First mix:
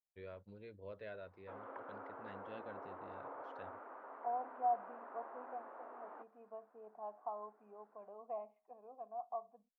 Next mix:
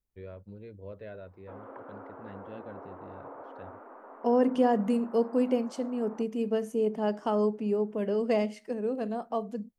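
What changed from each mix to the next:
second voice: remove formant resonators in series a
master: add low-shelf EQ 480 Hz +12 dB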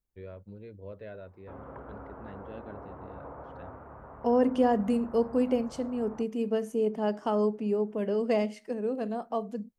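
background: remove Butterworth high-pass 250 Hz 48 dB per octave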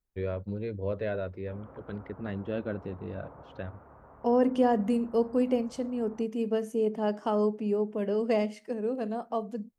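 first voice +11.5 dB
background −6.0 dB

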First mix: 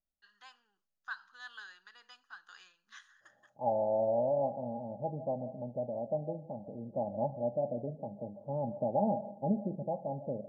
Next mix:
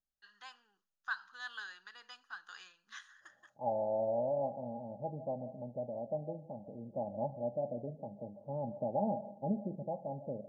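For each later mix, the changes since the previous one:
first voice +3.5 dB
second voice −3.5 dB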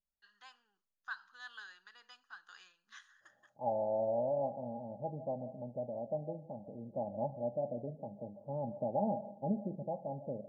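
first voice −5.0 dB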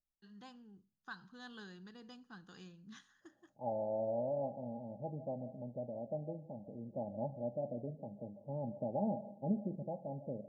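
first voice: remove high-pass filter 1,300 Hz 12 dB per octave
master: add drawn EQ curve 350 Hz 0 dB, 1,400 Hz −9 dB, 3,600 Hz −1 dB

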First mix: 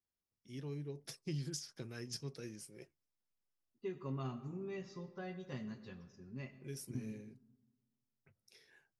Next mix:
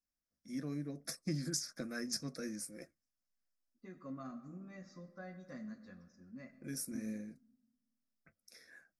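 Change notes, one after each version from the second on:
first voice +9.5 dB
master: add phaser with its sweep stopped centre 600 Hz, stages 8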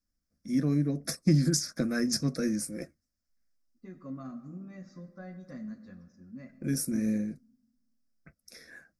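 first voice +8.0 dB
master: add low-shelf EQ 340 Hz +9 dB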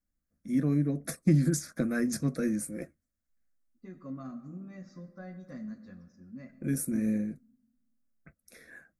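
first voice: add parametric band 5,200 Hz −14.5 dB 0.48 octaves

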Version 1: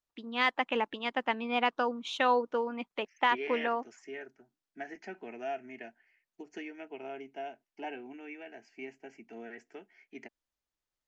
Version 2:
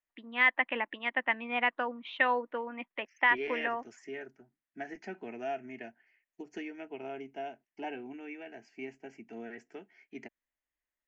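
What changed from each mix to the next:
first voice: add loudspeaker in its box 360–2,900 Hz, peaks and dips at 430 Hz −9 dB, 830 Hz −5 dB, 1,300 Hz −5 dB, 1,900 Hz +9 dB
master: add low-shelf EQ 150 Hz +11.5 dB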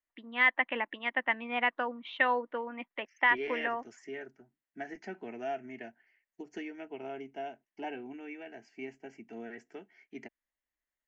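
master: add notch filter 2,500 Hz, Q 19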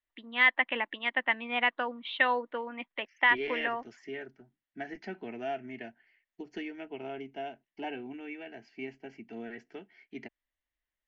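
second voice: add low-shelf EQ 170 Hz +8 dB
master: add low-pass with resonance 4,000 Hz, resonance Q 2.3

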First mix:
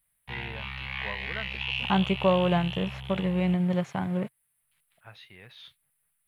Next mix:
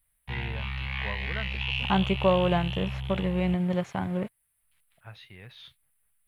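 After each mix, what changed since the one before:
second voice: add parametric band 150 Hz −8.5 dB 0.72 octaves
master: add low-shelf EQ 140 Hz +10.5 dB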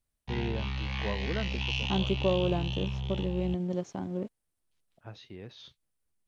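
first voice: add high-shelf EQ 4,900 Hz −9.5 dB
second voice −10.0 dB
master: add drawn EQ curve 140 Hz 0 dB, 310 Hz +13 dB, 450 Hz +7 dB, 710 Hz +2 dB, 1,200 Hz −2 dB, 2,100 Hz −7 dB, 3,800 Hz +2 dB, 6,100 Hz +14 dB, 10,000 Hz −8 dB

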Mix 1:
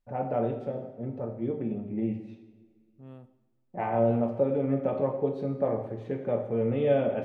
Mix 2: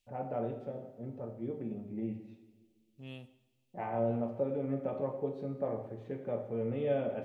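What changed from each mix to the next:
first voice −7.5 dB
second voice: add high shelf with overshoot 1,900 Hz +12.5 dB, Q 3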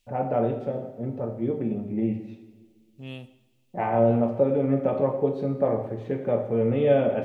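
first voice +11.5 dB
second voice +8.0 dB

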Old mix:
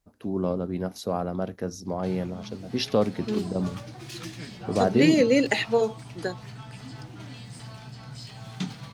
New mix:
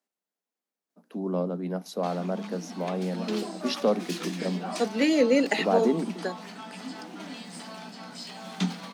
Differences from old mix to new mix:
first voice: entry +0.90 s
background +6.5 dB
master: add Chebyshev high-pass with heavy ripple 170 Hz, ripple 3 dB

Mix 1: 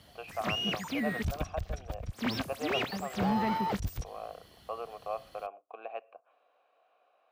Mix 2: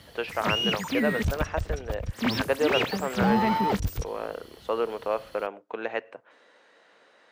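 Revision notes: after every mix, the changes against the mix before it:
speech: remove formant filter a
background +6.0 dB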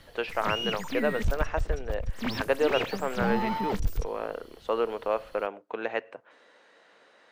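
background −5.5 dB
master: remove high-pass filter 68 Hz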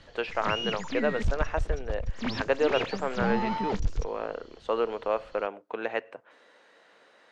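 background: add Chebyshev low-pass filter 7,000 Hz, order 5

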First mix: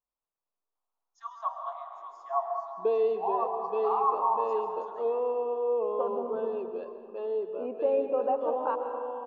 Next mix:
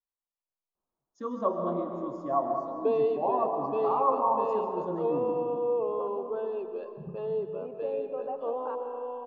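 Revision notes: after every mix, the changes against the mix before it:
first voice: remove Butterworth high-pass 690 Hz 96 dB per octave
second voice −8.0 dB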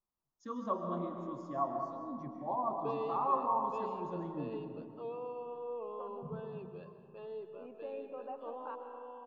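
first voice: entry −0.75 s
background −3.5 dB
master: add parametric band 510 Hz −10 dB 2.1 octaves

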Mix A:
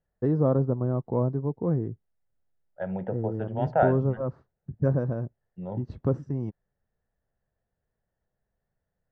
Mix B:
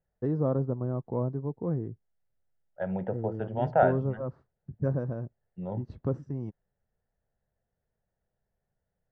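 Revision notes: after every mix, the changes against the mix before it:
first voice −4.5 dB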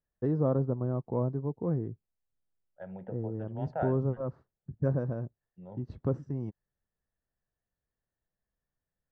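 second voice −11.5 dB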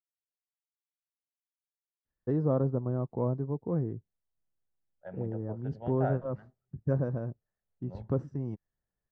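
first voice: entry +2.05 s
second voice: entry +2.25 s

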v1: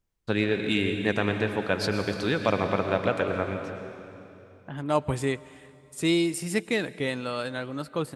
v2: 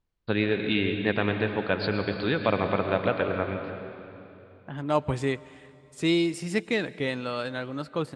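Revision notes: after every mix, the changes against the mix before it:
first voice: add Butterworth low-pass 4,700 Hz 96 dB per octave
master: add low-pass filter 6,200 Hz 12 dB per octave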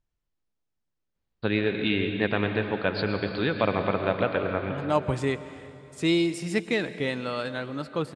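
first voice: entry +1.15 s
second voice: send +6.5 dB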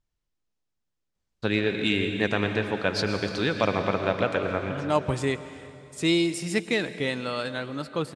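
first voice: remove Butterworth low-pass 4,700 Hz 96 dB per octave
master: add high-shelf EQ 3,900 Hz +6.5 dB

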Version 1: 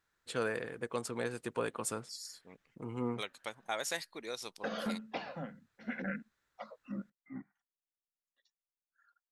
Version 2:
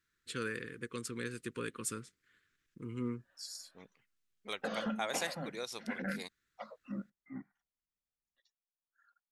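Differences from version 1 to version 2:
first voice: add Butterworth band-reject 730 Hz, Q 0.78
second voice: entry +1.30 s

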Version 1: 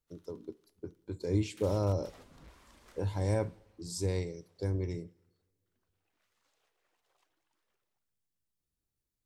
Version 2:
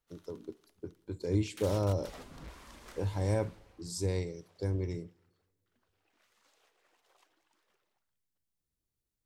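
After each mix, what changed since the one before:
background +7.5 dB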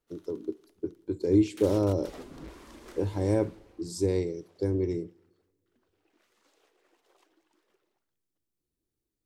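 master: add parametric band 340 Hz +12 dB 0.98 octaves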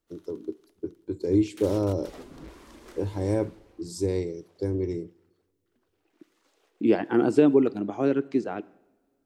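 second voice: unmuted

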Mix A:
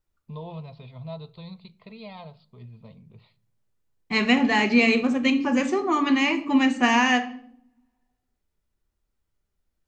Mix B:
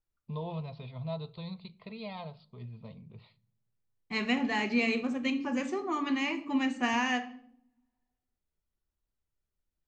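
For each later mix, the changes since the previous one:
second voice −9.5 dB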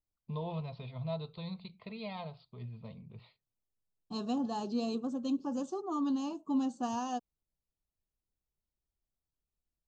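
second voice: add Butterworth band-reject 2,100 Hz, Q 0.81
reverb: off

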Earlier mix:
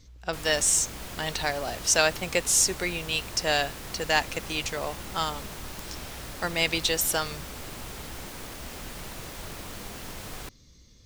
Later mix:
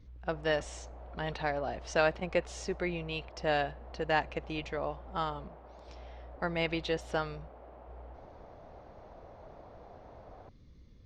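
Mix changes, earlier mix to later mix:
background: add resonant band-pass 660 Hz, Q 2.4
master: add head-to-tape spacing loss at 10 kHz 38 dB

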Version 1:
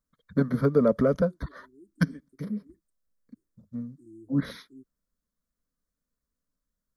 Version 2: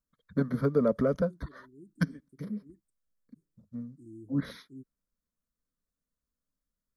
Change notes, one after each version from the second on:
first voice −4.0 dB
second voice: remove phaser with its sweep stopped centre 600 Hz, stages 6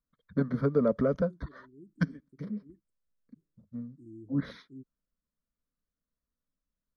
master: add high-frequency loss of the air 97 metres

